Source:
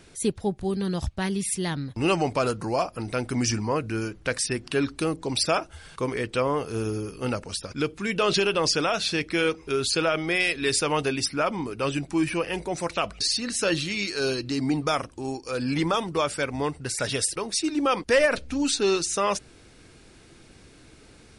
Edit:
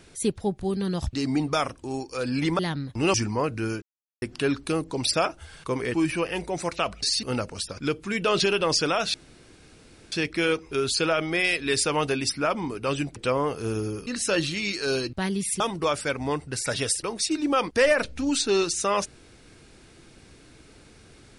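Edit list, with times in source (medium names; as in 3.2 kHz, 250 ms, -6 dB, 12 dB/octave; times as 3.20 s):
1.13–1.60 s: swap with 14.47–15.93 s
2.15–3.46 s: delete
4.14–4.54 s: mute
6.26–7.17 s: swap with 12.12–13.41 s
9.08 s: insert room tone 0.98 s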